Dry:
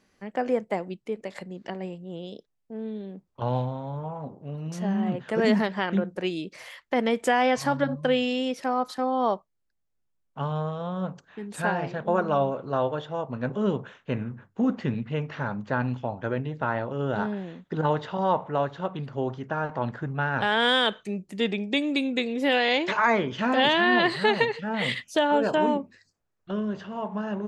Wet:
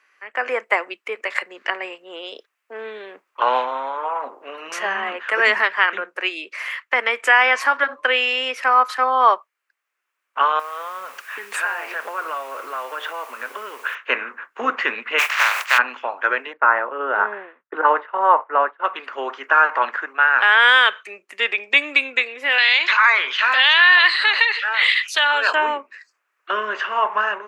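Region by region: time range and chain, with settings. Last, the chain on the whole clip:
10.59–13.95 s: compression 16:1, threshold -36 dBFS + word length cut 10-bit, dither triangular
15.18–15.77 s: spectral contrast reduction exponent 0.35 + high-pass 590 Hz 24 dB/octave + dynamic bell 1.3 kHz, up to -6 dB, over -41 dBFS, Q 1.1
16.53–18.84 s: low-pass 1.8 kHz + tilt shelf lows +3 dB, about 1.2 kHz + expander -30 dBFS
22.58–25.53 s: high-pass 1.3 kHz 6 dB/octave + peaking EQ 4 kHz +13 dB 0.51 oct + level flattener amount 50%
whole clip: Bessel high-pass 590 Hz, order 8; high-order bell 1.7 kHz +13 dB; level rider; trim -1 dB

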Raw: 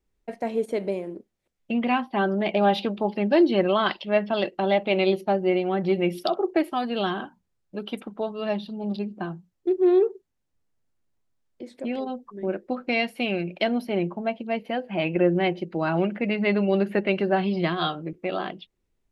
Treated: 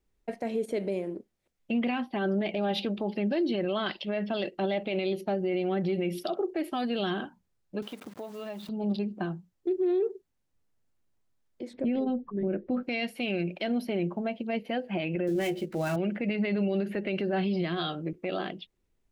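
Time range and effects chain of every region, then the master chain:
7.82–8.69 s: send-on-delta sampling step -43.5 dBFS + high-pass 180 Hz + compression 3:1, threshold -38 dBFS
11.73–12.83 s: low-pass 3.2 kHz + bass shelf 330 Hz +12 dB
15.27–15.96 s: dead-time distortion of 0.078 ms + doubling 14 ms -4 dB
whole clip: dynamic bell 1 kHz, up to -8 dB, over -41 dBFS, Q 1.6; peak limiter -21.5 dBFS

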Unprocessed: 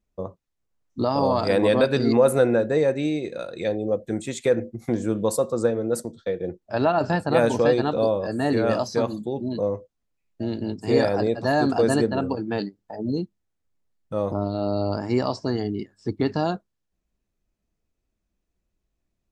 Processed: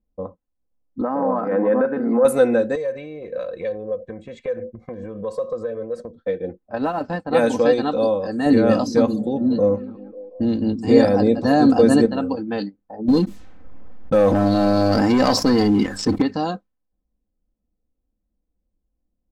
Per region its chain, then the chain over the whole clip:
1.01–2.25 s: transient shaper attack -11 dB, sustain +1 dB + Chebyshev band-pass 170–1600 Hz, order 3
2.75–6.16 s: compression 10:1, threshold -27 dBFS + comb 1.8 ms, depth 74%
6.75–7.33 s: companding laws mixed up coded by A + treble shelf 2.3 kHz -7.5 dB + upward expansion, over -41 dBFS
8.46–12.06 s: bass shelf 380 Hz +9 dB + repeats whose band climbs or falls 181 ms, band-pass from 160 Hz, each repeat 0.7 oct, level -12 dB
13.08–16.22 s: waveshaping leveller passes 2 + level flattener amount 70%
whole clip: level-controlled noise filter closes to 660 Hz, open at -19 dBFS; comb 3.9 ms, depth 63%

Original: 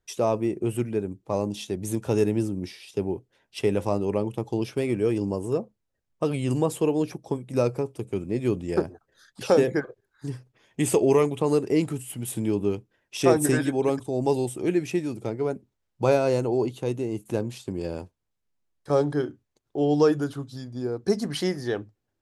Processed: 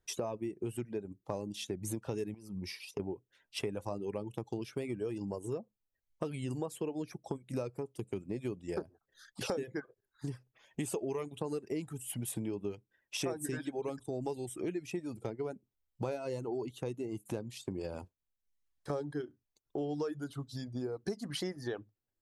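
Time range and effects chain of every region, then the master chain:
2.34–3.00 s: expander -48 dBFS + rippled EQ curve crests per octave 0.85, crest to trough 7 dB + compression 4:1, threshold -32 dBFS
whole clip: reverb removal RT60 0.76 s; compression 5:1, threshold -34 dBFS; trim -1 dB

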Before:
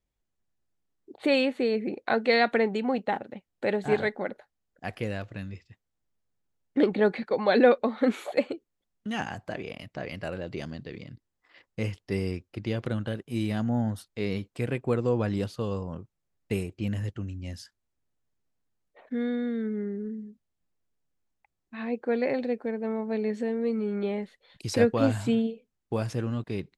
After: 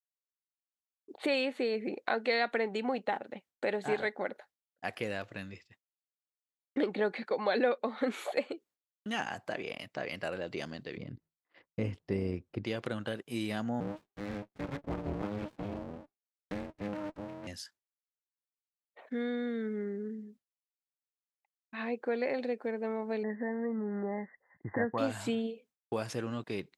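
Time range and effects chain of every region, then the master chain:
10.97–12.65 s: tilt EQ -3.5 dB/octave + AM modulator 160 Hz, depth 20%
13.80–17.47 s: low-pass 2.7 kHz + frequency shift -410 Hz + sliding maximum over 65 samples
23.23–24.98 s: brick-wall FIR low-pass 2.1 kHz + comb 1.1 ms, depth 46%
whole clip: high-pass 420 Hz 6 dB/octave; expander -56 dBFS; compression 2:1, threshold -33 dBFS; trim +1.5 dB

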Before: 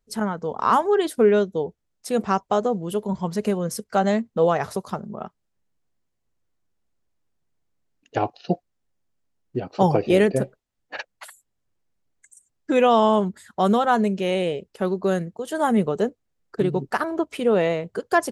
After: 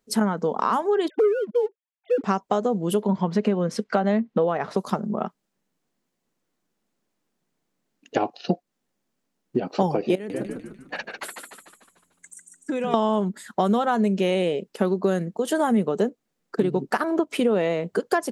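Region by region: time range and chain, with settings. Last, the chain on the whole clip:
1.08–2.24 s: formants replaced by sine waves + waveshaping leveller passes 1
3.02–4.77 s: low-pass 3.2 kHz + tape noise reduction on one side only encoder only
10.15–12.94 s: compression 5:1, threshold -33 dBFS + frequency-shifting echo 148 ms, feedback 52%, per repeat -88 Hz, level -5 dB
whole clip: compression, threshold -26 dBFS; resonant low shelf 130 Hz -14 dB, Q 1.5; trim +6 dB

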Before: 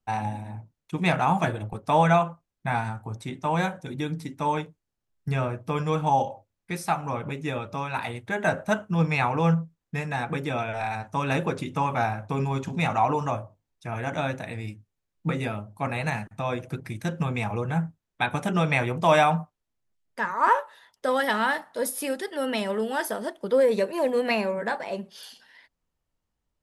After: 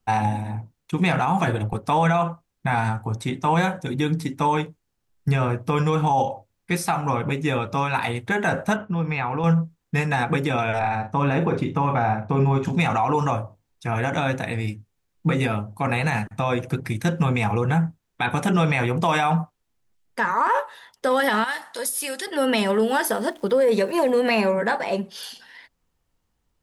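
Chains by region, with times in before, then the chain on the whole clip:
8.76–9.44 s: low-pass 3.2 kHz + compression 3:1, threshold -32 dBFS
10.79–12.65 s: low-pass 1.4 kHz 6 dB/octave + doubling 42 ms -10 dB
21.44–22.27 s: low-pass 10 kHz + tilt EQ +3.5 dB/octave + compression 2:1, threshold -39 dBFS
22.86–24.03 s: hum notches 60/120/180/240/300 Hz + crackle 500 per s -51 dBFS
whole clip: band-stop 610 Hz, Q 12; peak limiter -20 dBFS; trim +8 dB

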